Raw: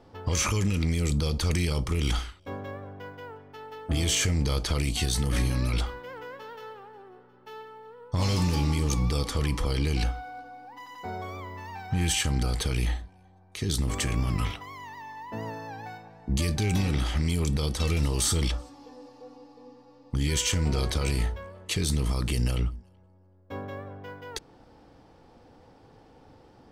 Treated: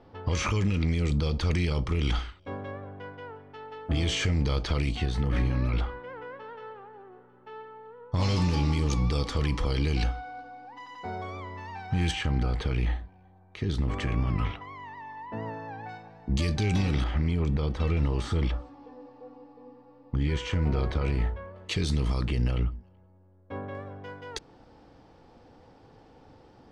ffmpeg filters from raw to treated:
-af "asetnsamples=n=441:p=0,asendcmd='4.95 lowpass f 2300;8.14 lowpass f 5100;12.11 lowpass f 2500;15.89 lowpass f 5100;17.04 lowpass f 2100;21.56 lowpass f 4600;22.25 lowpass f 2700;23.75 lowpass f 7000',lowpass=3800"

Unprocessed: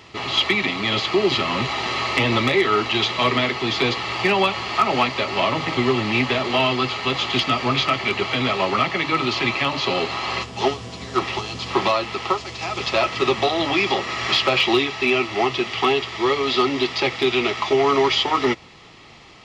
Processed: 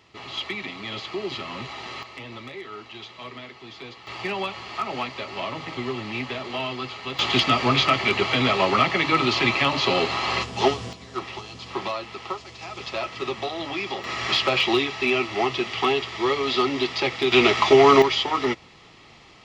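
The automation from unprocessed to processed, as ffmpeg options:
-af "asetnsamples=n=441:p=0,asendcmd='2.03 volume volume -19.5dB;4.07 volume volume -10dB;7.19 volume volume 0.5dB;10.93 volume volume -9.5dB;14.04 volume volume -3dB;17.32 volume volume 4dB;18.02 volume volume -4dB',volume=0.266"

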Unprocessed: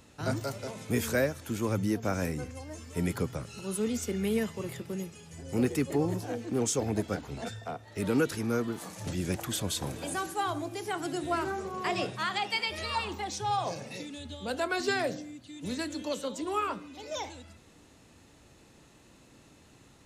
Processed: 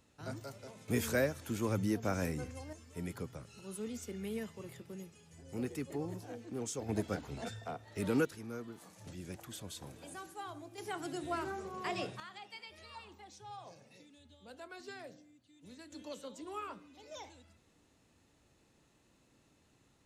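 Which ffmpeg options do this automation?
-af "asetnsamples=n=441:p=0,asendcmd='0.88 volume volume -4dB;2.73 volume volume -11dB;6.89 volume volume -4.5dB;8.25 volume volume -14dB;10.78 volume volume -7dB;12.2 volume volume -19dB;15.92 volume volume -12dB',volume=0.251"

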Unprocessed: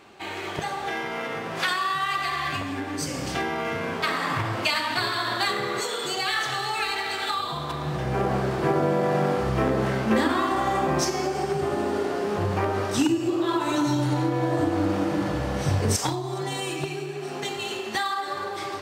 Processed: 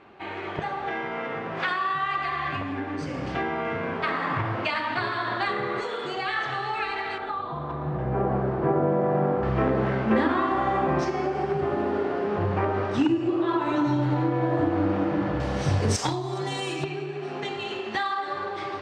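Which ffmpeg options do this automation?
-af "asetnsamples=n=441:p=0,asendcmd='7.18 lowpass f 1200;9.43 lowpass f 2400;15.4 lowpass f 6400;16.84 lowpass f 3200',lowpass=2300"

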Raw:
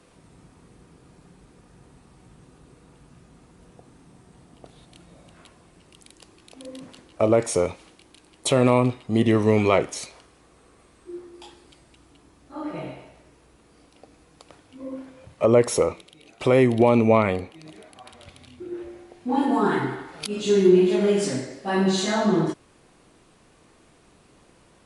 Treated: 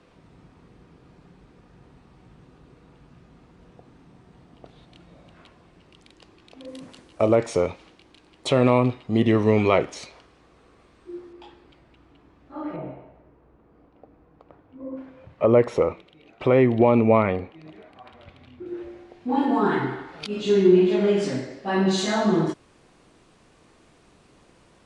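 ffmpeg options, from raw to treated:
-af "asetnsamples=n=441:p=0,asendcmd='6.68 lowpass f 9400;7.35 lowpass f 4700;11.33 lowpass f 2700;12.76 lowpass f 1200;14.97 lowpass f 2500;18.66 lowpass f 4500;21.91 lowpass f 8100',lowpass=4200"

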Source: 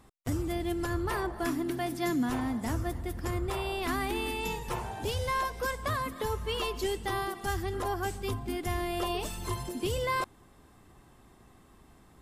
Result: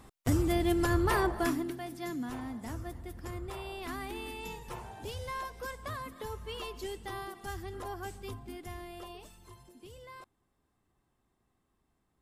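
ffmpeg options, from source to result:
-af "volume=1.58,afade=t=out:st=1.29:d=0.48:silence=0.251189,afade=t=out:st=8.19:d=1.26:silence=0.266073"

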